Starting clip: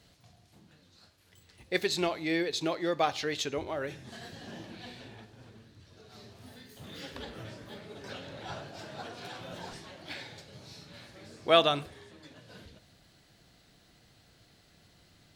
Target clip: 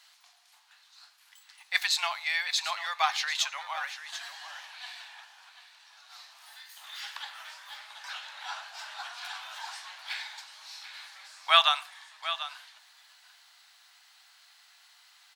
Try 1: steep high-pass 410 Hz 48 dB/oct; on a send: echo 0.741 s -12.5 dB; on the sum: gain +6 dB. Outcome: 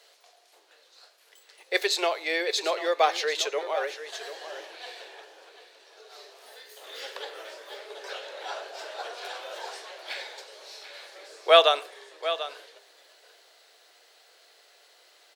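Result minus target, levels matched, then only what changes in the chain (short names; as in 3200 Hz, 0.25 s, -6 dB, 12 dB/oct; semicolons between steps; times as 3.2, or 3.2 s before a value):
500 Hz band +15.0 dB
change: steep high-pass 830 Hz 48 dB/oct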